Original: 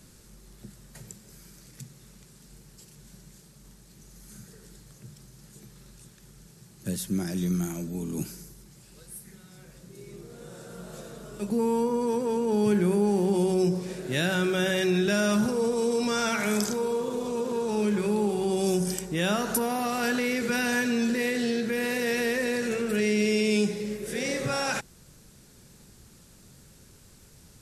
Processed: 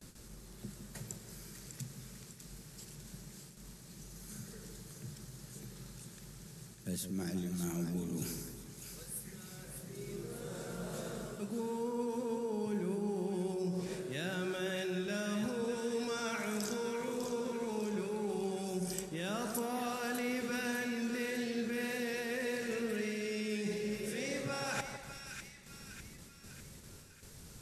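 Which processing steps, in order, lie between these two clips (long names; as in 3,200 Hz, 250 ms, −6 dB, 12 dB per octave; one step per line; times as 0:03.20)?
noise gate with hold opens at −43 dBFS
reversed playback
downward compressor 6 to 1, threshold −36 dBFS, peak gain reduction 15.5 dB
reversed playback
echo with a time of its own for lows and highs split 1,400 Hz, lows 158 ms, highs 600 ms, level −7 dB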